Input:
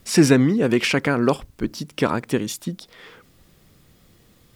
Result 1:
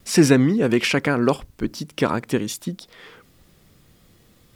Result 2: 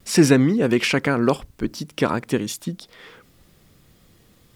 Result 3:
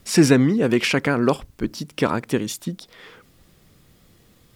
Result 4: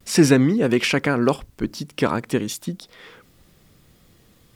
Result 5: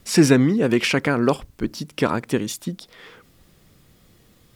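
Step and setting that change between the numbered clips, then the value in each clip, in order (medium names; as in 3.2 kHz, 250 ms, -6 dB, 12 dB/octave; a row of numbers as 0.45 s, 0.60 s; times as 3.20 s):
vibrato, rate: 1.2 Hz, 0.67 Hz, 10 Hz, 0.39 Hz, 4.9 Hz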